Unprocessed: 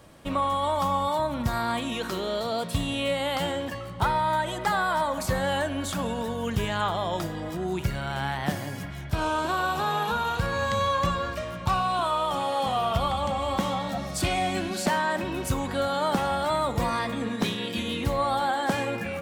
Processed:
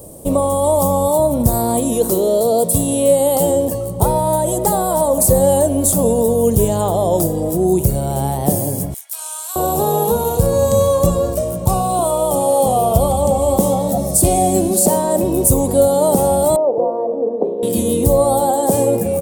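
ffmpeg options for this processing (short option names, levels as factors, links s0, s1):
-filter_complex "[0:a]asettb=1/sr,asplit=3[s0][s1][s2];[s0]atrim=end=2.144[s3];[s1]atrim=start=2.14:end=3.48,asetpts=PTS-STARTPTS,afade=t=in:d=0.004:c=qsin,afade=t=out:st=1.336:d=0.004:c=qsin,highpass=f=130:p=1[s4];[s2]atrim=start=3.476[s5];[s3][s4]acrossfade=d=0.004:c1=hsin:c2=qsin[s6];[s6][s5]acrossfade=d=0.004:c1=qsin:c2=hsin,asettb=1/sr,asplit=3[s7][s8][s9];[s7]atrim=end=8.944[s10];[s8]atrim=start=8.94:end=9.56,asetpts=PTS-STARTPTS,afade=t=in:d=0.004:c=qsin,afade=t=out:st=0.616:d=0.004:c=qsin,highpass=f=1400:w=0.5412,highpass=f=1400:w=1.3066[s11];[s9]atrim=start=9.556[s12];[s10][s11]acrossfade=d=0.004:c1=hsin:c2=qsin[s13];[s13][s12]acrossfade=d=0.004:c1=qsin:c2=hsin,asettb=1/sr,asplit=3[s14][s15][s16];[s14]atrim=end=16.564[s17];[s15]atrim=start=16.56:end=17.63,asetpts=PTS-STARTPTS,afade=t=in:d=0.004:c=qsin,afade=t=out:st=1.066:d=0.004:c=qsin,asuperpass=centerf=550:order=4:qfactor=1.1[s18];[s16]atrim=start=17.626[s19];[s17][s18]acrossfade=d=0.004:c1=hsin:c2=qsin[s20];[s20][s19]acrossfade=d=0.004:c1=qsin:c2=hsin,firequalizer=gain_entry='entry(290,0);entry(460,6);entry(1500,-25);entry(9000,13)':delay=0.05:min_phase=1,alimiter=level_in=5.01:limit=0.891:release=50:level=0:latency=1,volume=0.891"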